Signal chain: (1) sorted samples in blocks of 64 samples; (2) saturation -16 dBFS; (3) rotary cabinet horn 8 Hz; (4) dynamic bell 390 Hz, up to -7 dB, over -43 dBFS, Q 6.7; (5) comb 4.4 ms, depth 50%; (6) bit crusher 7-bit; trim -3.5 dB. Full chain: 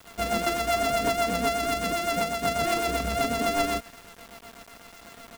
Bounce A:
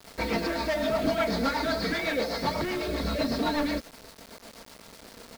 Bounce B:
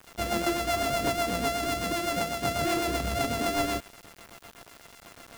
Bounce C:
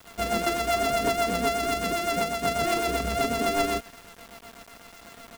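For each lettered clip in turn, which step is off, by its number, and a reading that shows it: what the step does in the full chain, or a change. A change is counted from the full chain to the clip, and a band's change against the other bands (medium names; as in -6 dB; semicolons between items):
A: 1, 8 kHz band -8.5 dB; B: 5, 125 Hz band +3.0 dB; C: 4, momentary loudness spread change -16 LU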